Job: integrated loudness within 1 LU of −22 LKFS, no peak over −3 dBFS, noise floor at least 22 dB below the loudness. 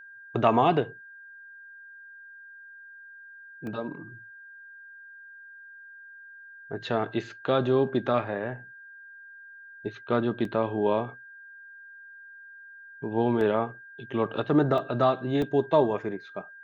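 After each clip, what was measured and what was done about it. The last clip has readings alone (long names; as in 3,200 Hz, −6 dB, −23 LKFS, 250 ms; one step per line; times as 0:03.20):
number of dropouts 5; longest dropout 1.7 ms; interfering tone 1,600 Hz; level of the tone −45 dBFS; integrated loudness −27.0 LKFS; sample peak −8.0 dBFS; target loudness −22.0 LKFS
→ repair the gap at 0:03.67/0:10.45/0:13.41/0:14.78/0:15.42, 1.7 ms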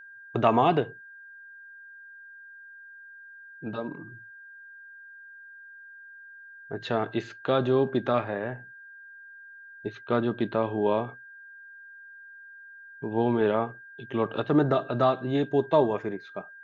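number of dropouts 0; interfering tone 1,600 Hz; level of the tone −45 dBFS
→ notch filter 1,600 Hz, Q 30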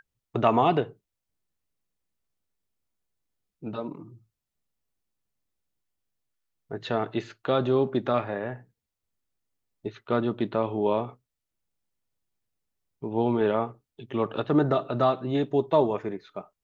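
interfering tone none found; integrated loudness −26.5 LKFS; sample peak −8.5 dBFS; target loudness −22.0 LKFS
→ level +4.5 dB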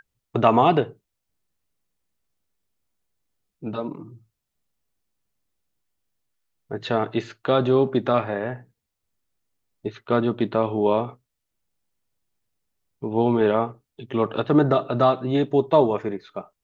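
integrated loudness −22.0 LKFS; sample peak −4.0 dBFS; background noise floor −81 dBFS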